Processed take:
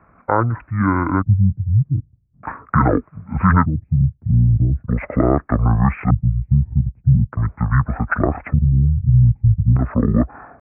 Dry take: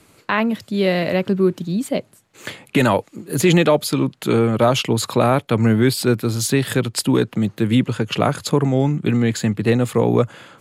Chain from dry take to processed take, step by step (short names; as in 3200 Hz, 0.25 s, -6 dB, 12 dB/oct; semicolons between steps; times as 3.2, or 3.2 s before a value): LFO low-pass square 0.41 Hz 240–2600 Hz; downsampling 11025 Hz; pitch shift -11.5 st